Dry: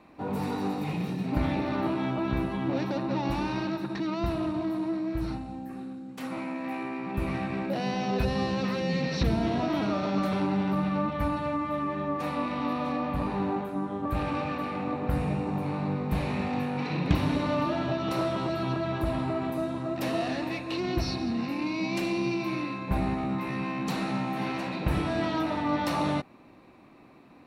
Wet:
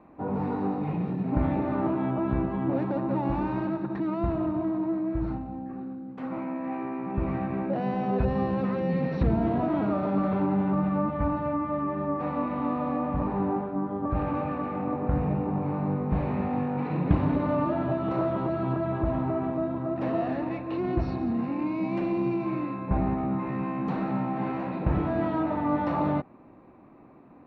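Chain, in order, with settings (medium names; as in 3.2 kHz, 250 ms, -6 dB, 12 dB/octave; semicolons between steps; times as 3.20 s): low-pass 1.3 kHz 12 dB/octave; trim +2 dB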